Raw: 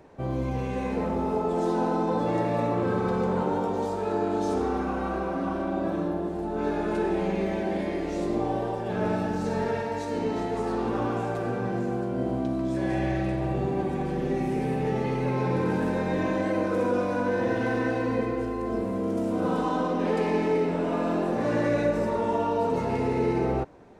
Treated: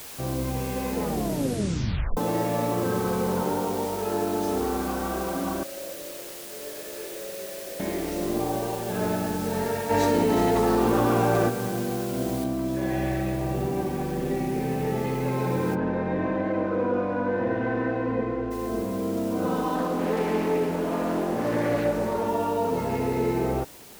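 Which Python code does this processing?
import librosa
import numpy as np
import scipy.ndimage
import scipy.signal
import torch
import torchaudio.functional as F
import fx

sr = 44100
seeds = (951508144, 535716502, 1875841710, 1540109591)

y = fx.vowel_filter(x, sr, vowel='e', at=(5.63, 7.8))
y = fx.env_flatten(y, sr, amount_pct=100, at=(9.89, 11.48), fade=0.02)
y = fx.noise_floor_step(y, sr, seeds[0], at_s=12.44, before_db=-41, after_db=-48, tilt_db=0.0)
y = fx.lowpass(y, sr, hz=2100.0, slope=12, at=(15.74, 18.5), fade=0.02)
y = fx.doppler_dist(y, sr, depth_ms=0.28, at=(19.75, 22.28))
y = fx.edit(y, sr, fx.tape_stop(start_s=1.01, length_s=1.16), tone=tone)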